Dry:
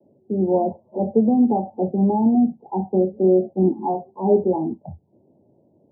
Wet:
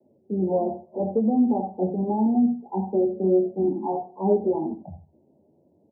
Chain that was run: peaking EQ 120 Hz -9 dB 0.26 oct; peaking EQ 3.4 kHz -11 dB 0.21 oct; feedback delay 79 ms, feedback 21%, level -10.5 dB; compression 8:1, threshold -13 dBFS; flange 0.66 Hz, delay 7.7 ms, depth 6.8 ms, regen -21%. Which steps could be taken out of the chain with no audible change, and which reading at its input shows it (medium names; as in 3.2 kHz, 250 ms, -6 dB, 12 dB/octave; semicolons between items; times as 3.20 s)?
peaking EQ 3.4 kHz: input has nothing above 960 Hz